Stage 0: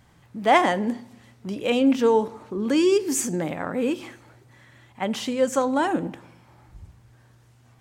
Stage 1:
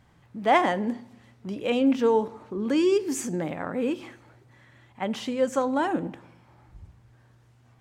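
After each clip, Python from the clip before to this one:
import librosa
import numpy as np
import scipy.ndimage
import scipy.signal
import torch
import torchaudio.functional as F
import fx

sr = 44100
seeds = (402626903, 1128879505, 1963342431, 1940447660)

y = fx.high_shelf(x, sr, hz=5100.0, db=-7.5)
y = y * 10.0 ** (-2.5 / 20.0)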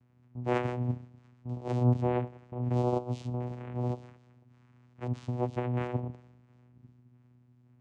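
y = fx.echo_wet_highpass(x, sr, ms=346, feedback_pct=61, hz=2800.0, wet_db=-20.0)
y = fx.vocoder(y, sr, bands=4, carrier='saw', carrier_hz=123.0)
y = y * 10.0 ** (-5.5 / 20.0)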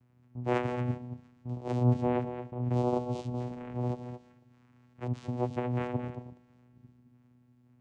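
y = x + 10.0 ** (-9.5 / 20.0) * np.pad(x, (int(224 * sr / 1000.0), 0))[:len(x)]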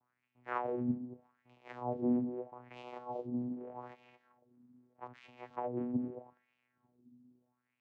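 y = fx.wah_lfo(x, sr, hz=0.8, low_hz=230.0, high_hz=2600.0, q=3.6)
y = y * 10.0 ** (4.0 / 20.0)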